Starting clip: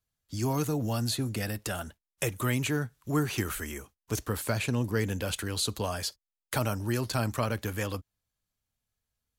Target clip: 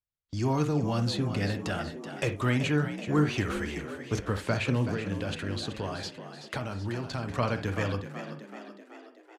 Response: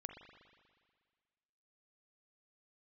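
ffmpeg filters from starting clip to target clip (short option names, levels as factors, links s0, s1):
-filter_complex "[0:a]acontrast=82,agate=range=0.2:threshold=0.00891:ratio=16:detection=peak,asettb=1/sr,asplit=3[s0][s1][s2];[s0]atrim=end=4.934[s3];[s1]atrim=start=4.93:end=7.3,asetpts=PTS-STARTPTS,afade=t=in:d=0.004:c=qsin,afade=t=out:st=2.366:d=0.004:c=qsin,acompressor=threshold=0.0562:ratio=6[s4];[s2]atrim=start=7.296[s5];[s3][s4]acrossfade=d=0.004:c1=hsin:c2=qsin[s6];[s6][s5]acrossfade=d=0.004:c1=qsin:c2=hsin,lowpass=4500,asplit=8[s7][s8][s9][s10][s11][s12][s13][s14];[s8]adelay=379,afreqshift=54,volume=0.299[s15];[s9]adelay=758,afreqshift=108,volume=0.17[s16];[s10]adelay=1137,afreqshift=162,volume=0.0966[s17];[s11]adelay=1516,afreqshift=216,volume=0.0556[s18];[s12]adelay=1895,afreqshift=270,volume=0.0316[s19];[s13]adelay=2274,afreqshift=324,volume=0.018[s20];[s14]adelay=2653,afreqshift=378,volume=0.0102[s21];[s7][s15][s16][s17][s18][s19][s20][s21]amix=inputs=8:normalize=0[s22];[1:a]atrim=start_sample=2205,atrim=end_sample=3087[s23];[s22][s23]afir=irnorm=-1:irlink=0"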